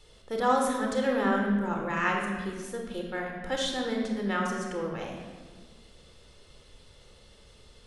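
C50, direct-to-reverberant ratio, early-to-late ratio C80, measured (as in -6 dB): 2.5 dB, 0.5 dB, 5.0 dB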